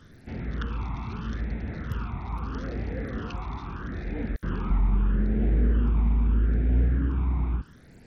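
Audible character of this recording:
a quantiser's noise floor 10 bits, dither triangular
phaser sweep stages 12, 0.78 Hz, lowest notch 510–1,100 Hz
SBC

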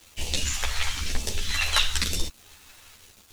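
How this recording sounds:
phaser sweep stages 2, 1 Hz, lowest notch 260–1,400 Hz
a quantiser's noise floor 8 bits, dither none
a shimmering, thickened sound

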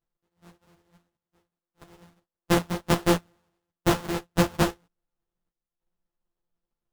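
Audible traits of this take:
a buzz of ramps at a fixed pitch in blocks of 256 samples
chopped level 0.69 Hz, depth 65%, duty 80%
aliases and images of a low sample rate 2,300 Hz, jitter 20%
a shimmering, thickened sound

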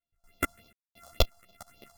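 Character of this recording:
a buzz of ramps at a fixed pitch in blocks of 64 samples
phaser sweep stages 4, 3.5 Hz, lowest notch 350–1,700 Hz
sample-and-hold tremolo 4.2 Hz, depth 100%
a shimmering, thickened sound

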